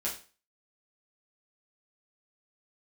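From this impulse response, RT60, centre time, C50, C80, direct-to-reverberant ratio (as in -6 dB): 0.35 s, 24 ms, 8.5 dB, 13.5 dB, -6.0 dB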